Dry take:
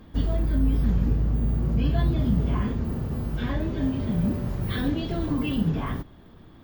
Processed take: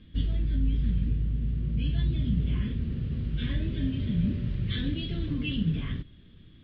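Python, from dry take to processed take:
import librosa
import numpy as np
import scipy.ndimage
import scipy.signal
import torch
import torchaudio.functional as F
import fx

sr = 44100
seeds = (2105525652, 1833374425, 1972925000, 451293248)

y = fx.curve_eq(x, sr, hz=(150.0, 280.0, 540.0, 820.0, 1800.0, 3300.0, 7900.0), db=(0, -5, -11, -22, -2, 9, -10))
y = fx.rider(y, sr, range_db=10, speed_s=2.0)
y = fx.air_absorb(y, sr, metres=220.0)
y = F.gain(torch.from_numpy(y), -2.5).numpy()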